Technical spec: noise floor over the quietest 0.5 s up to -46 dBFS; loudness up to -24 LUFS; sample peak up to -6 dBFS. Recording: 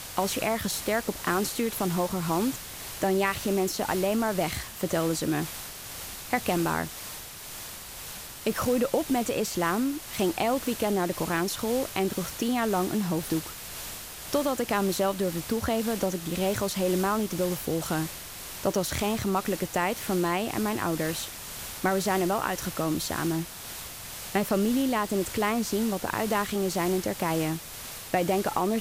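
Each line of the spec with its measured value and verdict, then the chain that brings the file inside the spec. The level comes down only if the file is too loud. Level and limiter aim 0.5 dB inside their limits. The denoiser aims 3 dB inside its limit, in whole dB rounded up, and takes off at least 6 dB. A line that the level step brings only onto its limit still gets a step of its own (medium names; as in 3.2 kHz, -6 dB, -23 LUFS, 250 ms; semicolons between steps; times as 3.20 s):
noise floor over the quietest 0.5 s -41 dBFS: fail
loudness -28.5 LUFS: pass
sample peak -13.0 dBFS: pass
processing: noise reduction 8 dB, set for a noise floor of -41 dBFS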